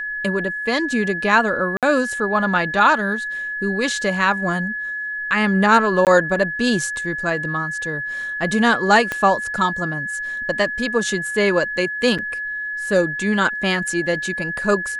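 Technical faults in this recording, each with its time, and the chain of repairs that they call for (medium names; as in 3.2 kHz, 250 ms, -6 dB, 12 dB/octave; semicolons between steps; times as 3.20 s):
whine 1.7 kHz -24 dBFS
1.77–1.83 s: dropout 57 ms
6.05–6.07 s: dropout 18 ms
9.12 s: pop -9 dBFS
12.18–12.19 s: dropout 6.4 ms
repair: de-click; band-stop 1.7 kHz, Q 30; interpolate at 1.77 s, 57 ms; interpolate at 6.05 s, 18 ms; interpolate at 12.18 s, 6.4 ms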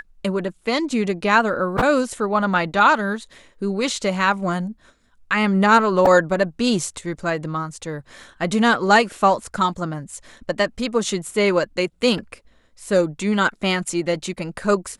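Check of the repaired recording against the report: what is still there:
9.12 s: pop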